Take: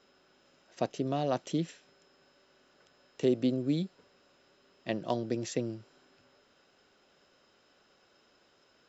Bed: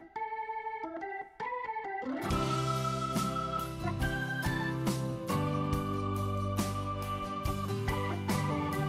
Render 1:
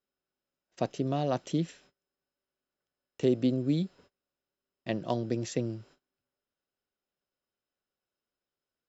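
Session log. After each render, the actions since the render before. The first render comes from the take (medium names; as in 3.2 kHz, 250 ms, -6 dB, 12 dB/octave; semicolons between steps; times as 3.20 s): gate -58 dBFS, range -27 dB; bass shelf 110 Hz +10.5 dB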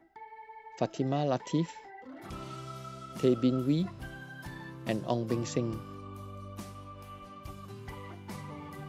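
add bed -11 dB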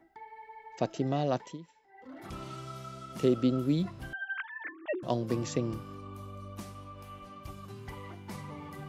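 1.34–2.11 s: dip -18 dB, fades 0.24 s; 4.13–5.03 s: formants replaced by sine waves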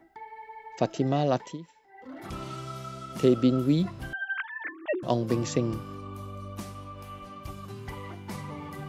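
trim +4.5 dB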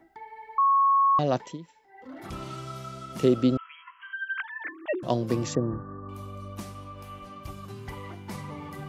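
0.58–1.19 s: bleep 1.1 kHz -17.5 dBFS; 3.57–4.40 s: brick-wall FIR band-pass 940–3300 Hz; 5.55–6.09 s: brick-wall FIR low-pass 1.9 kHz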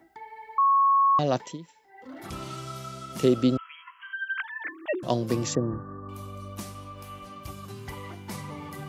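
high-pass 44 Hz; treble shelf 3.9 kHz +6.5 dB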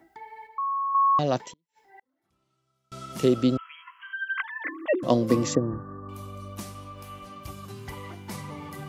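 0.47–0.95 s: feedback comb 66 Hz, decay 1.4 s; 1.52–2.92 s: inverted gate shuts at -40 dBFS, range -37 dB; 4.14–5.57 s: small resonant body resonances 270/510/1100/2000 Hz, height 12 dB -> 8 dB, ringing for 30 ms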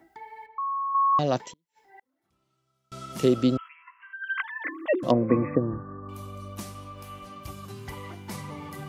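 0.46–1.13 s: distance through air 270 m; 3.68–4.24 s: rippled Chebyshev low-pass 2.8 kHz, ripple 6 dB; 5.11–6.03 s: brick-wall FIR low-pass 2.6 kHz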